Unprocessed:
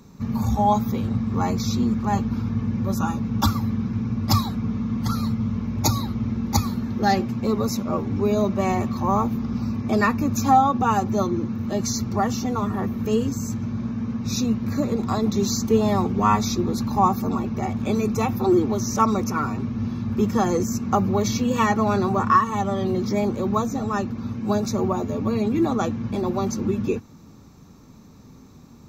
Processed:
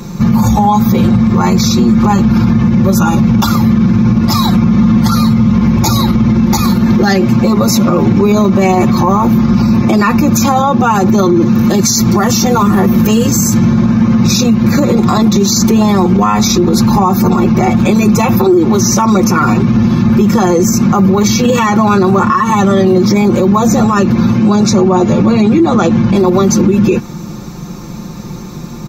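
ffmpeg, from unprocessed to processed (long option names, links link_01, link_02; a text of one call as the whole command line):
ffmpeg -i in.wav -filter_complex "[0:a]asettb=1/sr,asplit=3[link_01][link_02][link_03];[link_01]atrim=end=11.424[link_04];[link_02]atrim=start=11.42:end=13.59,asetpts=PTS-STARTPTS,afade=type=in:duration=0.004:curve=qsin,afade=type=out:start_time=2.166:duration=0.004:curve=qsin,highshelf=frequency=6000:gain=8[link_05];[link_03]atrim=start=13.586[link_06];[link_04][link_05]acrossfade=duration=0.004:curve1=hsin:curve2=qsin[link_07];[link_07][link_06]acrossfade=duration=0.004:curve1=qsin:curve2=hsin,asettb=1/sr,asplit=3[link_08][link_09][link_10];[link_08]atrim=end=24.364[link_11];[link_09]atrim=start=24.36:end=26.15,asetpts=PTS-STARTPTS,afade=type=in:duration=0.004:curve=qsin,afade=type=out:start_time=1.786:duration=0.004:curve=qsin,lowpass=8000[link_12];[link_10]atrim=start=26.146[link_13];[link_11][link_12]acrossfade=duration=0.004:curve1=hsin:curve2=qsin[link_14];[link_14][link_13]acrossfade=duration=0.004:curve1=qsin:curve2=hsin,aecho=1:1:5.7:0.8,acompressor=threshold=-20dB:ratio=6,alimiter=level_in=21.5dB:limit=-1dB:release=50:level=0:latency=1,volume=-1dB" out.wav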